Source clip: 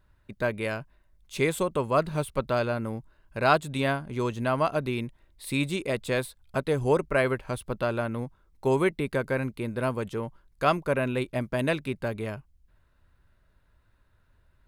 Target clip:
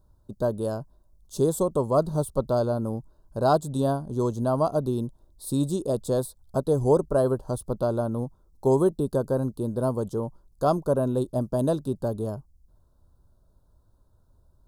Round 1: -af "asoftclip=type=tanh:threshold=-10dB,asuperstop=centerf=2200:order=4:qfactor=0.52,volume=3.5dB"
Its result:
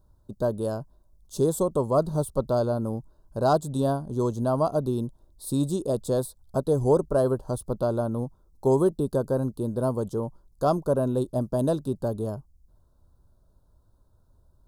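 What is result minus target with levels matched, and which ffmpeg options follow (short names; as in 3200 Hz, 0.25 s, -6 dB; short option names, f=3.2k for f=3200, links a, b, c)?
soft clip: distortion +15 dB
-af "asoftclip=type=tanh:threshold=-2dB,asuperstop=centerf=2200:order=4:qfactor=0.52,volume=3.5dB"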